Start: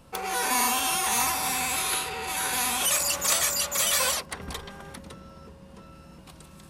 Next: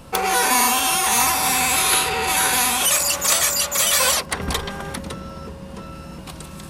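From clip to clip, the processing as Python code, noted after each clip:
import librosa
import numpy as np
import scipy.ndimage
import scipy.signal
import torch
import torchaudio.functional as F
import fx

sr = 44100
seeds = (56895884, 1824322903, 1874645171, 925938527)

y = fx.rider(x, sr, range_db=5, speed_s=0.5)
y = y * 10.0 ** (7.5 / 20.0)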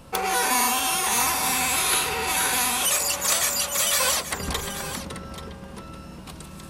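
y = x + 10.0 ** (-12.5 / 20.0) * np.pad(x, (int(834 * sr / 1000.0), 0))[:len(x)]
y = y * 10.0 ** (-4.5 / 20.0)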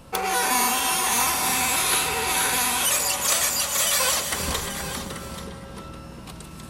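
y = fx.rev_gated(x, sr, seeds[0], gate_ms=490, shape='rising', drr_db=8.0)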